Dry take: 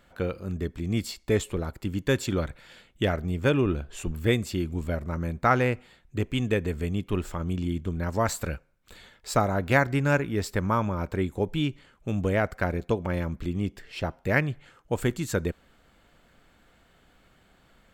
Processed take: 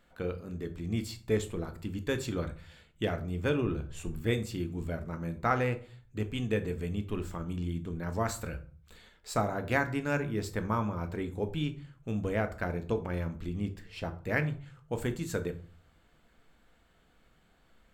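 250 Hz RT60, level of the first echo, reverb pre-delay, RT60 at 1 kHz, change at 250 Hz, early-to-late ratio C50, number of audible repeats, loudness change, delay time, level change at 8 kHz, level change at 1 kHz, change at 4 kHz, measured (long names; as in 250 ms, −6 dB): 0.55 s, no echo audible, 3 ms, 0.45 s, −5.5 dB, 15.0 dB, no echo audible, −6.0 dB, no echo audible, −6.5 dB, −6.0 dB, −6.5 dB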